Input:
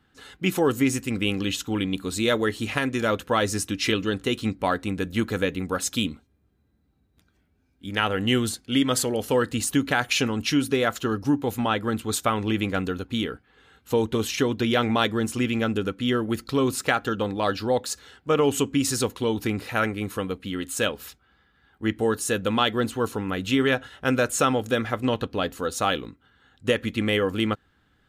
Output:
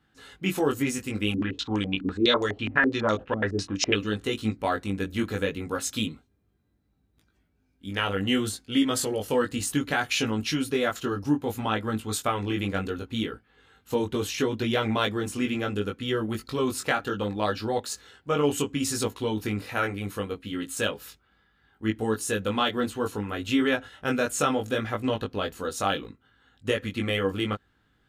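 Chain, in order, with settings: chorus 0.68 Hz, delay 18.5 ms, depth 2.2 ms; 1.34–3.95 stepped low-pass 12 Hz 270–6500 Hz

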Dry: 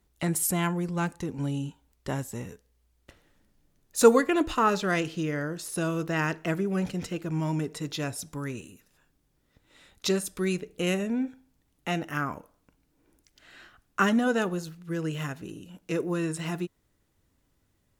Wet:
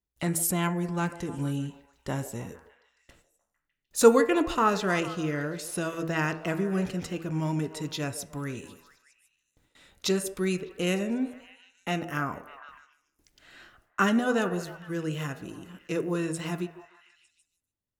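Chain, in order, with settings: de-hum 81.85 Hz, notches 36; gate with hold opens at -49 dBFS; delay with a stepping band-pass 0.151 s, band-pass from 520 Hz, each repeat 0.7 oct, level -10 dB

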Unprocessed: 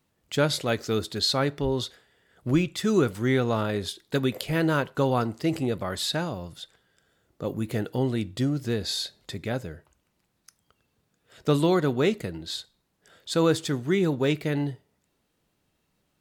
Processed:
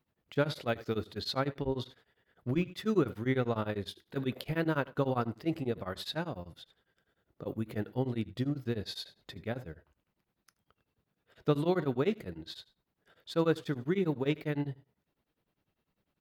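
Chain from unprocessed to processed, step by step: bell 7800 Hz -14 dB 1.2 oct; feedback echo 78 ms, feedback 22%, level -18.5 dB; beating tremolo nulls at 10 Hz; gain -4 dB

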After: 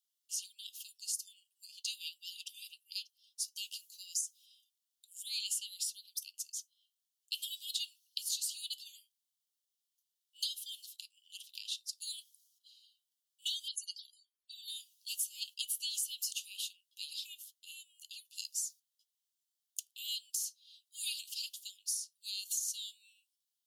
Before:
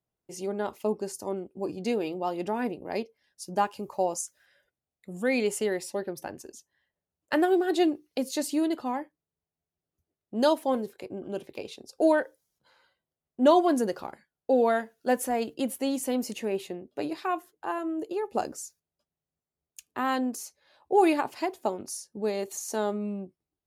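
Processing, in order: steep high-pass 2900 Hz 96 dB/oct; compressor 8:1, threshold -41 dBFS, peak gain reduction 12 dB; 13.68–14.68 loudest bins only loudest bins 64; gain +8 dB

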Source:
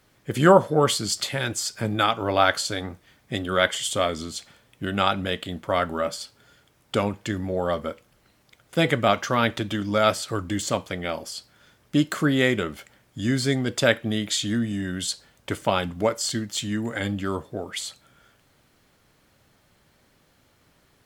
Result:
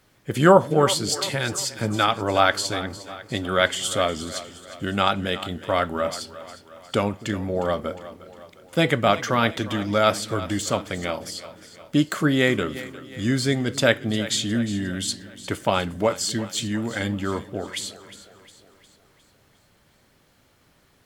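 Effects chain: split-band echo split 360 Hz, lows 0.263 s, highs 0.357 s, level -15 dB; gain +1 dB

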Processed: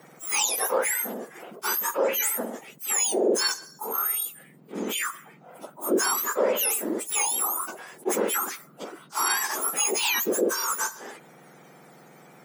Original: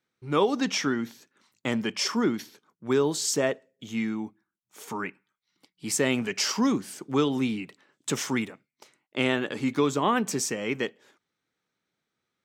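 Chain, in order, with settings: spectrum mirrored in octaves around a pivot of 1700 Hz; HPF 230 Hz 6 dB/oct; fast leveller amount 50%

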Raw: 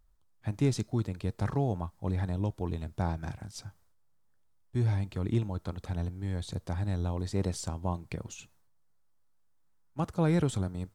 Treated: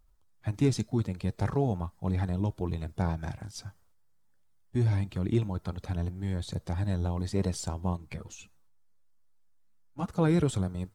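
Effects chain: bin magnitudes rounded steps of 15 dB; 7.97–10.11 ensemble effect; gain +2 dB

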